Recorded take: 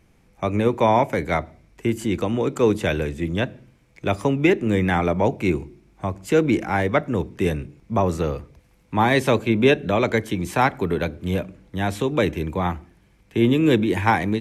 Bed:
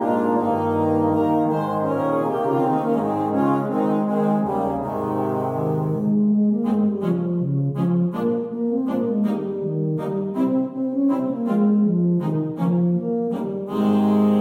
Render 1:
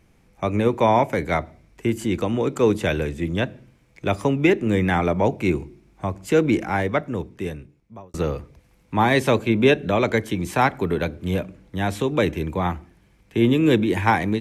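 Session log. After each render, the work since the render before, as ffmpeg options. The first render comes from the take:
-filter_complex "[0:a]asplit=2[a][b];[a]atrim=end=8.14,asetpts=PTS-STARTPTS,afade=t=out:st=6.59:d=1.55[c];[b]atrim=start=8.14,asetpts=PTS-STARTPTS,afade=t=in:d=0.004:c=hsin[d];[c][d]concat=n=2:v=0:a=1"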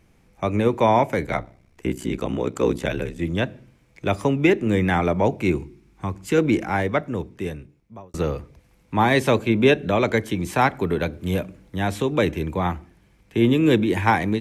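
-filter_complex "[0:a]asplit=3[a][b][c];[a]afade=t=out:st=1.26:d=0.02[d];[b]aeval=exprs='val(0)*sin(2*PI*32*n/s)':c=same,afade=t=in:st=1.26:d=0.02,afade=t=out:st=3.18:d=0.02[e];[c]afade=t=in:st=3.18:d=0.02[f];[d][e][f]amix=inputs=3:normalize=0,asettb=1/sr,asplit=3[g][h][i];[g]atrim=end=5.584[j];[h]atrim=start=5.58:end=6.38,asetpts=PTS-STARTPTS,afade=t=in:d=0.004:c=qsin,afade=t=out:st=0.796:d=0.004:c=qsin,equalizer=f=620:w=3.3:g=-11.5[k];[i]atrim=start=6.376[l];[j][k]acrossfade=d=0.004:c1=hsin:c2=qsin[m];[m][l]acrossfade=d=0.004:c1=qsin:c2=hsin,asettb=1/sr,asplit=3[n][o][p];[n]atrim=end=11.134[q];[o]atrim=start=11.13:end=11.76,asetpts=PTS-STARTPTS,afade=t=in:d=0.004:c=qsin,afade=t=out:st=0.626:d=0.004:c=qsin,highshelf=f=8.2k:g=7[r];[p]atrim=start=11.756[s];[q][r]acrossfade=d=0.004:c1=hsin:c2=qsin[t];[t][s]acrossfade=d=0.004:c1=qsin:c2=hsin"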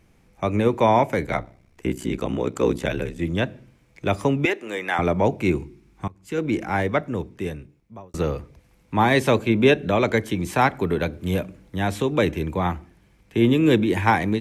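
-filter_complex "[0:a]asettb=1/sr,asplit=3[a][b][c];[a]atrim=end=4.454[d];[b]atrim=start=4.45:end=4.99,asetpts=PTS-STARTPTS,afade=t=in:d=0.004:c=qsin,afade=t=out:st=0.536:d=0.004:c=qsin,highpass=600[e];[c]atrim=start=4.986[f];[d][e]acrossfade=d=0.004:c1=hsin:c2=qsin[g];[g][f]acrossfade=d=0.004:c1=qsin:c2=hsin,asplit=2[h][i];[h]atrim=end=6.08,asetpts=PTS-STARTPTS,afade=t=out:st=6.076:d=0.004:c=hsin:silence=0.0707946[j];[i]atrim=start=6.08,asetpts=PTS-STARTPTS,afade=t=in:d=0.71:silence=0.0707946[k];[j][k]concat=n=2:v=0:a=1"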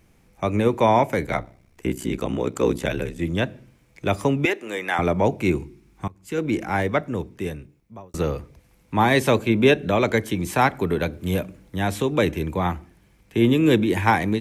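-af "highshelf=f=9.2k:g=7"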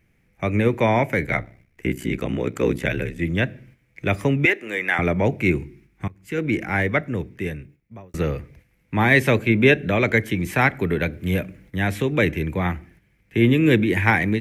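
-af "agate=range=-7dB:threshold=-51dB:ratio=16:detection=peak,equalizer=f=125:t=o:w=1:g=4,equalizer=f=1k:t=o:w=1:g=-7,equalizer=f=2k:t=o:w=1:g=10,equalizer=f=4k:t=o:w=1:g=-4,equalizer=f=8k:t=o:w=1:g=-5"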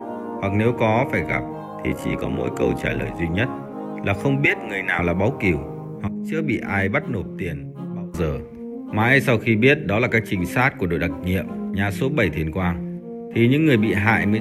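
-filter_complex "[1:a]volume=-10.5dB[a];[0:a][a]amix=inputs=2:normalize=0"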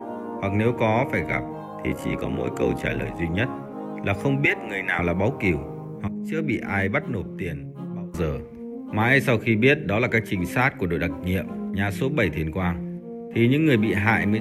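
-af "volume=-2.5dB"

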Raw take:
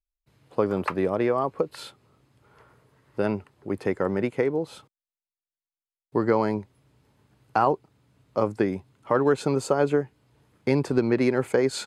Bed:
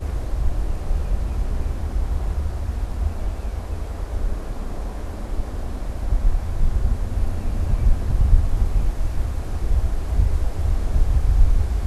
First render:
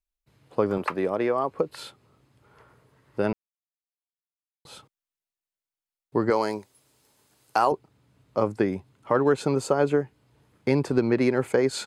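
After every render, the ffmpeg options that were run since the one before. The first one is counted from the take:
-filter_complex "[0:a]asettb=1/sr,asplit=3[a][b][c];[a]atrim=end=0.784[d];[b]atrim=start=0.78:end=1.51,asetpts=PTS-STARTPTS,afade=t=in:d=0.004:c=qsin,afade=t=out:st=0.726:d=0.004:c=qsin,highpass=f=230:p=1[e];[c]atrim=start=1.506[f];[d][e]acrossfade=d=0.004:c1=hsin:c2=qsin[g];[g][f]acrossfade=d=0.004:c1=qsin:c2=hsin,asettb=1/sr,asplit=3[h][i][j];[h]atrim=end=6.304[k];[i]atrim=start=6.3:end=7.72,asetpts=PTS-STARTPTS,afade=t=in:d=0.004:c=qsin,afade=t=out:st=1.416:d=0.004:c=qsin,bass=f=250:g=-12,treble=f=4k:g=14[l];[j]atrim=start=7.716[m];[k][l]acrossfade=d=0.004:c1=hsin:c2=qsin[n];[n][m]acrossfade=d=0.004:c1=qsin:c2=hsin,asplit=3[o][p][q];[o]atrim=end=3.33,asetpts=PTS-STARTPTS,afade=t=out:st=3.326:d=0.004:c=hsin[r];[p]atrim=start=3.33:end=4.65,asetpts=PTS-STARTPTS,volume=0[s];[q]atrim=start=4.65,asetpts=PTS-STARTPTS,afade=t=in:d=0.004:c=hsin[t];[r][s][t]concat=n=3:v=0:a=1"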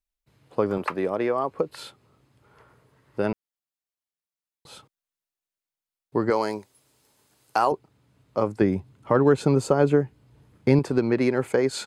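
-filter_complex "[0:a]asettb=1/sr,asplit=3[a][b][c];[a]atrim=end=8.614[d];[b]atrim=start=8.61:end=10.79,asetpts=PTS-STARTPTS,afade=t=in:d=0.004:c=qsin,afade=t=out:st=2.176:d=0.004:c=qsin,lowshelf=f=260:g=9[e];[c]atrim=start=10.786[f];[d][e]acrossfade=d=0.004:c1=hsin:c2=qsin[g];[g][f]acrossfade=d=0.004:c1=qsin:c2=hsin"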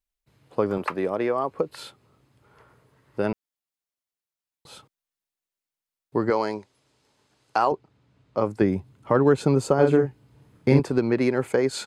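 -filter_complex "[0:a]asettb=1/sr,asplit=3[a][b][c];[a]atrim=end=6.294[d];[b]atrim=start=6.29:end=8.44,asetpts=PTS-STARTPTS,afade=t=in:d=0.004:c=qsin,afade=t=out:st=2.146:d=0.004:c=qsin,lowpass=5.7k[e];[c]atrim=start=8.436[f];[d][e]acrossfade=d=0.004:c1=hsin:c2=qsin[g];[g][f]acrossfade=d=0.004:c1=qsin:c2=hsin,asettb=1/sr,asplit=3[h][i][j];[h]atrim=end=9.744[k];[i]atrim=start=9.74:end=10.8,asetpts=PTS-STARTPTS,afade=t=in:d=0.004:c=qsin,afade=t=out:st=1.056:d=0.004:c=qsin,asplit=2[l][m];[m]adelay=44,volume=-5dB[n];[l][n]amix=inputs=2:normalize=0,atrim=end_sample=46746[o];[j]atrim=start=10.796[p];[k][o]acrossfade=d=0.004:c1=hsin:c2=qsin[q];[q][p]acrossfade=d=0.004:c1=qsin:c2=hsin"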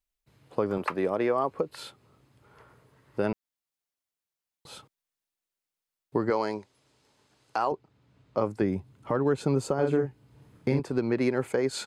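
-af "alimiter=limit=-15dB:level=0:latency=1:release=493"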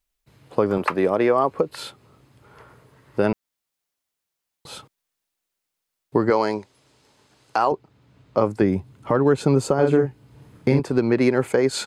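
-af "volume=7.5dB"

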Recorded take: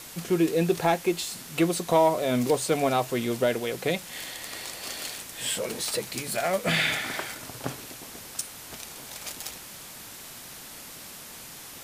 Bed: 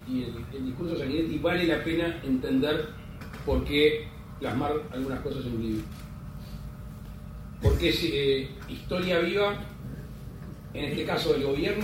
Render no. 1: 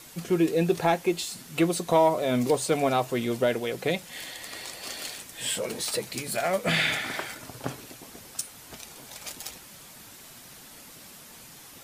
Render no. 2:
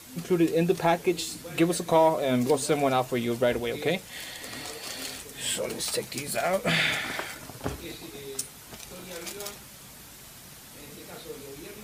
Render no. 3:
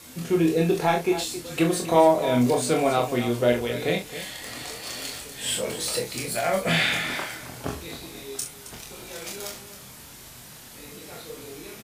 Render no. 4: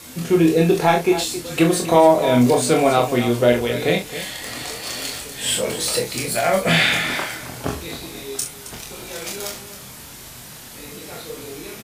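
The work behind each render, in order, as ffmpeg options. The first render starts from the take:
-af "afftdn=nr=6:nf=-44"
-filter_complex "[1:a]volume=-16.5dB[a];[0:a][a]amix=inputs=2:normalize=0"
-filter_complex "[0:a]asplit=2[a][b];[b]adelay=25,volume=-4dB[c];[a][c]amix=inputs=2:normalize=0,aecho=1:1:41|269:0.447|0.224"
-af "volume=6dB,alimiter=limit=-3dB:level=0:latency=1"

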